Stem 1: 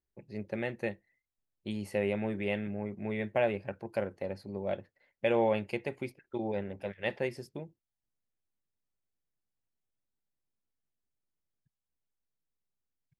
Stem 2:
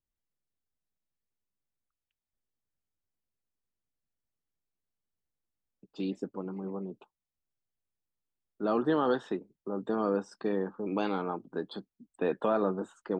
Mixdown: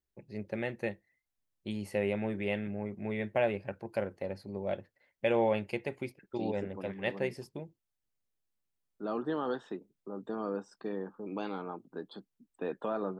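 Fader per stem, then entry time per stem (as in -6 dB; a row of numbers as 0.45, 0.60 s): -0.5, -6.5 dB; 0.00, 0.40 s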